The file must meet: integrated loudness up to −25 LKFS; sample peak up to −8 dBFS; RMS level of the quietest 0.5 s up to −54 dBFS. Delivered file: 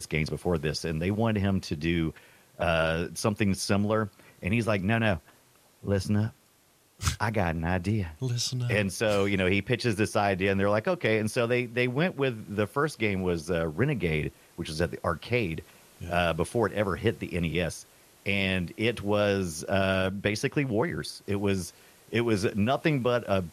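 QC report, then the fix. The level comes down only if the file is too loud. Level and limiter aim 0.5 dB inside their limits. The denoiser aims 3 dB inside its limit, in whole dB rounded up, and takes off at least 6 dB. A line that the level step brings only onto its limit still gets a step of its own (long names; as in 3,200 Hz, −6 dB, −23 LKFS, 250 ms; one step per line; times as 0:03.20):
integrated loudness −28.0 LKFS: in spec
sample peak −10.5 dBFS: in spec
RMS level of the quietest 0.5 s −63 dBFS: in spec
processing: no processing needed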